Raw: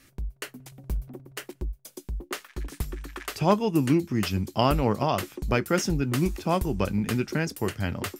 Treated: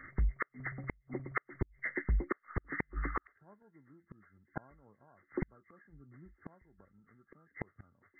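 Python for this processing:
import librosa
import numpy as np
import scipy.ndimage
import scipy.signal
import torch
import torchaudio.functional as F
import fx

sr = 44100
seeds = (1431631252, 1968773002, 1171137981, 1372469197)

y = fx.freq_compress(x, sr, knee_hz=1100.0, ratio=4.0)
y = fx.low_shelf(y, sr, hz=430.0, db=10.0, at=(5.92, 6.33), fade=0.02)
y = fx.gate_flip(y, sr, shuts_db=-23.0, range_db=-41)
y = y * librosa.db_to_amplitude(2.5)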